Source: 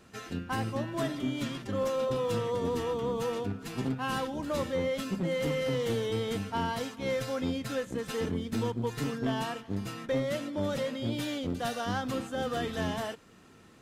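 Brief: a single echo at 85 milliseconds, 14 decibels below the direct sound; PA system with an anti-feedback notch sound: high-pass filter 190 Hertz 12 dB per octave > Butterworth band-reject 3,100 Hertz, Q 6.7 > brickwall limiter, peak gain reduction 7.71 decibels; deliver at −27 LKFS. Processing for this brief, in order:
high-pass filter 190 Hz 12 dB per octave
Butterworth band-reject 3,100 Hz, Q 6.7
single-tap delay 85 ms −14 dB
level +10 dB
brickwall limiter −18.5 dBFS

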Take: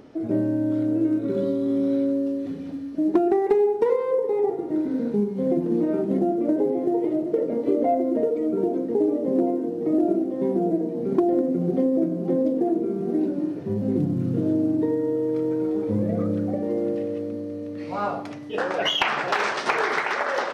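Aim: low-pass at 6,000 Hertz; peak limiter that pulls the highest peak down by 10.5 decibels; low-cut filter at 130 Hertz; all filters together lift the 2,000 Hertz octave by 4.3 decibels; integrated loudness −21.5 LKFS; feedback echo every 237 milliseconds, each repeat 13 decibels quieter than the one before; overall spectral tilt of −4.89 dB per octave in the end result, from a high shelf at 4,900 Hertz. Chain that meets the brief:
high-pass filter 130 Hz
low-pass filter 6,000 Hz
parametric band 2,000 Hz +6.5 dB
high-shelf EQ 4,900 Hz −7.5 dB
brickwall limiter −16.5 dBFS
repeating echo 237 ms, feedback 22%, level −13 dB
level +3.5 dB

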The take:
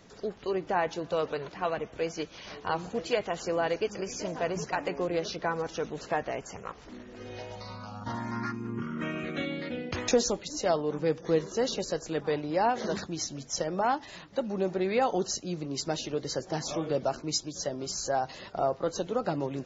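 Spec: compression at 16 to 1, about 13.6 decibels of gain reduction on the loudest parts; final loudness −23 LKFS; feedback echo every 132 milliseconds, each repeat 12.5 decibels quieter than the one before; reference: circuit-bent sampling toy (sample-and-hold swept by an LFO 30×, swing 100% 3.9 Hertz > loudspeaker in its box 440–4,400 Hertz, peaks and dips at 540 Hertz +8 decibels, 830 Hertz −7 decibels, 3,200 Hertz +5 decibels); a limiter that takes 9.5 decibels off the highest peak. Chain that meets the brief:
downward compressor 16 to 1, threshold −33 dBFS
brickwall limiter −29.5 dBFS
repeating echo 132 ms, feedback 24%, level −12.5 dB
sample-and-hold swept by an LFO 30×, swing 100% 3.9 Hz
loudspeaker in its box 440–4,400 Hz, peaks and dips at 540 Hz +8 dB, 830 Hz −7 dB, 3,200 Hz +5 dB
level +18 dB

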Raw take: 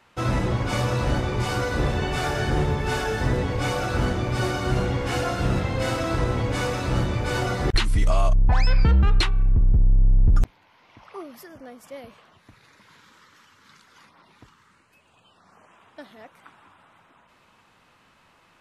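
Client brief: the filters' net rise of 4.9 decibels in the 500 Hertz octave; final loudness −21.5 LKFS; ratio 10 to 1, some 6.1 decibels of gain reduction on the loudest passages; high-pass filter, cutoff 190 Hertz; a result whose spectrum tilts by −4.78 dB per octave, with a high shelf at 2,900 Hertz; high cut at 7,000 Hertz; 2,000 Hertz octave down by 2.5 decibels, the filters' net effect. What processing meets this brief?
high-pass filter 190 Hz
low-pass filter 7,000 Hz
parametric band 500 Hz +6 dB
parametric band 2,000 Hz −6.5 dB
high-shelf EQ 2,900 Hz +6.5 dB
downward compressor 10 to 1, threshold −25 dBFS
level +9 dB

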